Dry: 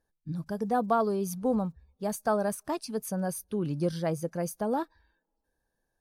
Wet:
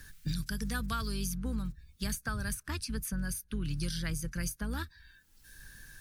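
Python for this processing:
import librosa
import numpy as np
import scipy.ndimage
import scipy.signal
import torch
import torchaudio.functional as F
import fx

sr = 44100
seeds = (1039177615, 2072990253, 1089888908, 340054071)

y = fx.octave_divider(x, sr, octaves=2, level_db=-2.0)
y = fx.curve_eq(y, sr, hz=(140.0, 730.0, 1500.0), db=(0, -23, 4))
y = fx.band_squash(y, sr, depth_pct=100)
y = y * librosa.db_to_amplitude(-1.5)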